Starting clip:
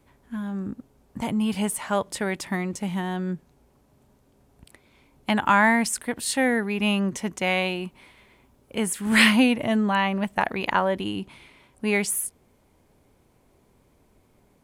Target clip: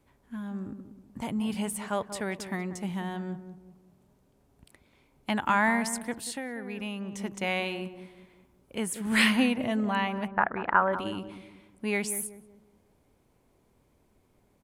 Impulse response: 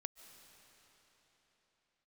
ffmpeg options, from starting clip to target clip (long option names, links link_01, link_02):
-filter_complex "[0:a]asplit=3[link_01][link_02][link_03];[link_01]afade=type=out:start_time=10.26:duration=0.02[link_04];[link_02]lowpass=frequency=1400:width_type=q:width=3.3,afade=type=in:start_time=10.26:duration=0.02,afade=type=out:start_time=10.92:duration=0.02[link_05];[link_03]afade=type=in:start_time=10.92:duration=0.02[link_06];[link_04][link_05][link_06]amix=inputs=3:normalize=0,asplit=2[link_07][link_08];[link_08]adelay=187,lowpass=frequency=840:poles=1,volume=-9dB,asplit=2[link_09][link_10];[link_10]adelay=187,lowpass=frequency=840:poles=1,volume=0.42,asplit=2[link_11][link_12];[link_12]adelay=187,lowpass=frequency=840:poles=1,volume=0.42,asplit=2[link_13][link_14];[link_14]adelay=187,lowpass=frequency=840:poles=1,volume=0.42,asplit=2[link_15][link_16];[link_16]adelay=187,lowpass=frequency=840:poles=1,volume=0.42[link_17];[link_09][link_11][link_13][link_15][link_17]amix=inputs=5:normalize=0[link_18];[link_07][link_18]amix=inputs=2:normalize=0,asplit=3[link_19][link_20][link_21];[link_19]afade=type=out:start_time=6.19:duration=0.02[link_22];[link_20]acompressor=threshold=-27dB:ratio=6,afade=type=in:start_time=6.19:duration=0.02,afade=type=out:start_time=7.19:duration=0.02[link_23];[link_21]afade=type=in:start_time=7.19:duration=0.02[link_24];[link_22][link_23][link_24]amix=inputs=3:normalize=0,volume=-6dB"